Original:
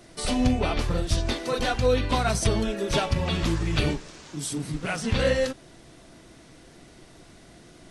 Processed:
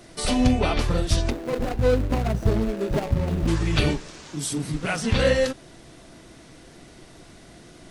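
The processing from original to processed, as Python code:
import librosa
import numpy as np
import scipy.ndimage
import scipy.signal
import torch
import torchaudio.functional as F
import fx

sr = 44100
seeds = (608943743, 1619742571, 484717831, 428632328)

y = fx.median_filter(x, sr, points=41, at=(1.29, 3.47), fade=0.02)
y = y * 10.0 ** (3.0 / 20.0)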